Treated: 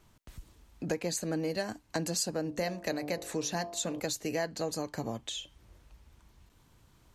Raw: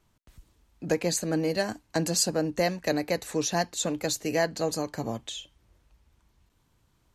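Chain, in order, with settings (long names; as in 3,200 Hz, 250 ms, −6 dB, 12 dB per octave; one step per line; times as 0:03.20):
0:02.42–0:04.00: hum removal 49.06 Hz, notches 25
downward compressor 2 to 1, threshold −45 dBFS, peak gain reduction 13.5 dB
level +5.5 dB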